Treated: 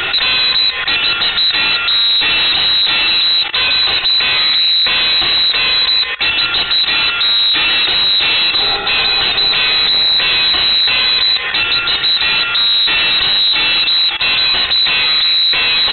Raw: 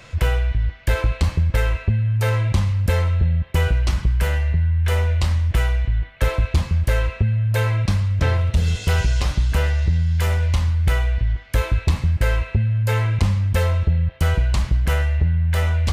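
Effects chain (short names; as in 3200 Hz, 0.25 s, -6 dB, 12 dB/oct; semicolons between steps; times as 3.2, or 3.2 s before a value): comb 2.8 ms, depth 54%; level quantiser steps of 24 dB; small resonant body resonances 290/1300 Hz, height 10 dB; overdrive pedal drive 38 dB, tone 3100 Hz, clips at -14.5 dBFS; inverted band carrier 4000 Hz; 8.98–11.42 three-band squash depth 40%; gain +7.5 dB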